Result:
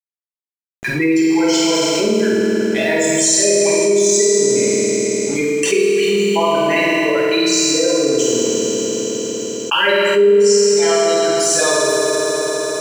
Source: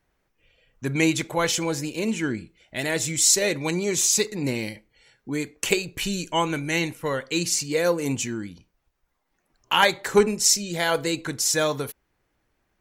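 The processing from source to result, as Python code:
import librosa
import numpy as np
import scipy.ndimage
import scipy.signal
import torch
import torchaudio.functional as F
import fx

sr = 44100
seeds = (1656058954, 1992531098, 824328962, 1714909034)

y = fx.spec_dropout(x, sr, seeds[0], share_pct=23)
y = scipy.signal.sosfilt(scipy.signal.butter(2, 10000.0, 'lowpass', fs=sr, output='sos'), y)
y = fx.spec_gate(y, sr, threshold_db=-15, keep='strong')
y = scipy.signal.sosfilt(scipy.signal.butter(2, 290.0, 'highpass', fs=sr, output='sos'), y)
y = np.sign(y) * np.maximum(np.abs(y) - 10.0 ** (-47.0 / 20.0), 0.0)
y = fx.room_flutter(y, sr, wall_m=8.5, rt60_s=0.56)
y = fx.rev_fdn(y, sr, rt60_s=2.7, lf_ratio=1.0, hf_ratio=1.0, size_ms=15.0, drr_db=-6.5)
y = fx.env_flatten(y, sr, amount_pct=70)
y = y * librosa.db_to_amplitude(-8.5)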